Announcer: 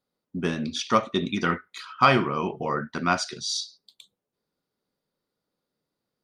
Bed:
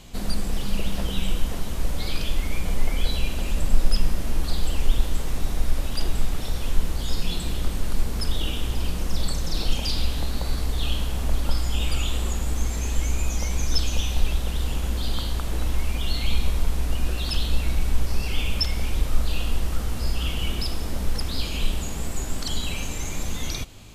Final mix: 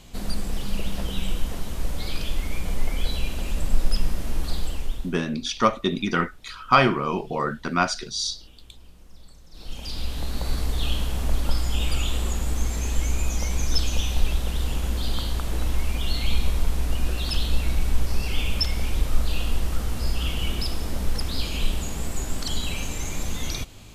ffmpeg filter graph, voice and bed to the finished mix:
-filter_complex "[0:a]adelay=4700,volume=1.19[s0];[1:a]volume=11.9,afade=t=out:st=4.54:d=0.64:silence=0.0841395,afade=t=in:st=9.51:d=1.02:silence=0.0668344[s1];[s0][s1]amix=inputs=2:normalize=0"

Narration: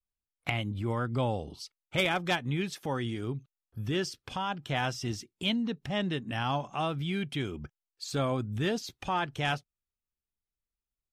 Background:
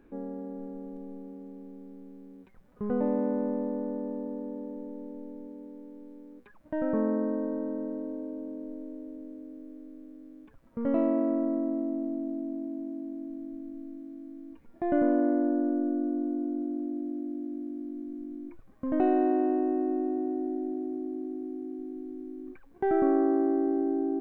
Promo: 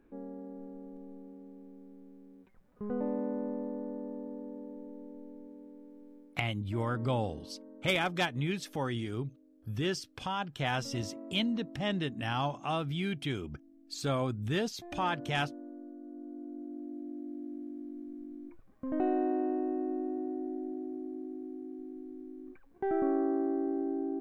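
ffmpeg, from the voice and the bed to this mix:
-filter_complex "[0:a]adelay=5900,volume=0.841[s0];[1:a]volume=2.24,afade=t=out:st=6.16:d=0.37:silence=0.237137,afade=t=in:st=16:d=1.49:silence=0.223872[s1];[s0][s1]amix=inputs=2:normalize=0"

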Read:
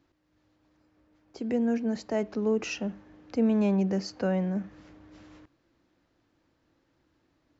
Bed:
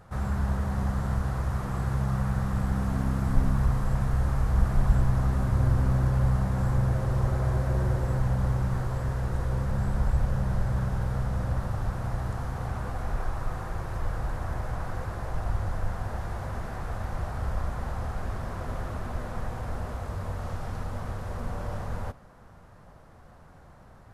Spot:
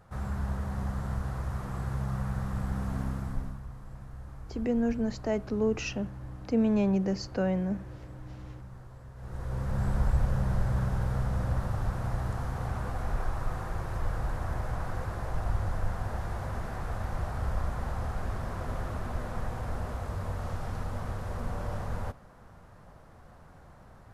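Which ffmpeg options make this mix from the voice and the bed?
-filter_complex "[0:a]adelay=3150,volume=0.891[s0];[1:a]volume=4.22,afade=t=out:st=3.02:d=0.59:silence=0.211349,afade=t=in:st=9.15:d=0.73:silence=0.133352[s1];[s0][s1]amix=inputs=2:normalize=0"

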